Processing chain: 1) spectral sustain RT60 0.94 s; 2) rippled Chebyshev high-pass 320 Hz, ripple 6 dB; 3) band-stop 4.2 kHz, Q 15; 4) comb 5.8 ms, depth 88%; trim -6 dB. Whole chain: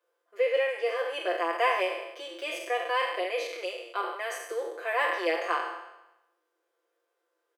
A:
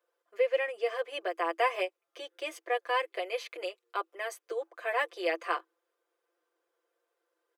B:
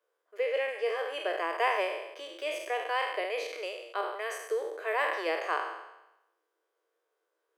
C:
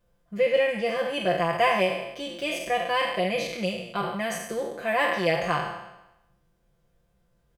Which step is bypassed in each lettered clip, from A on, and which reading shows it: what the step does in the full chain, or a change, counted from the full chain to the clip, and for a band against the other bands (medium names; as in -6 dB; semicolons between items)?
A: 1, crest factor change +2.0 dB; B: 4, 250 Hz band -2.5 dB; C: 2, 250 Hz band +7.5 dB